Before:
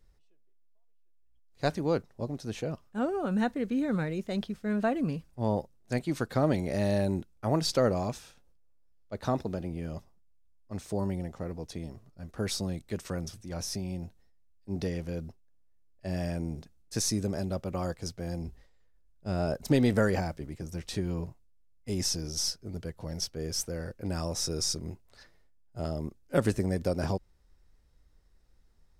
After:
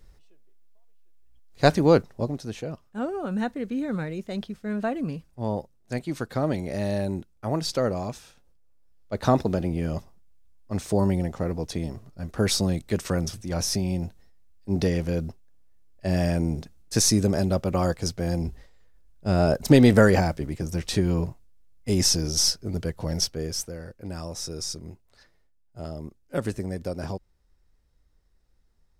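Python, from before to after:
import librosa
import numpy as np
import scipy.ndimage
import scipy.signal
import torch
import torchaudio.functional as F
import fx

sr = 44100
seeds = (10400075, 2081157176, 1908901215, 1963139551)

y = fx.gain(x, sr, db=fx.line((2.07, 10.5), (2.58, 0.5), (8.15, 0.5), (9.26, 9.0), (23.2, 9.0), (23.79, -2.0)))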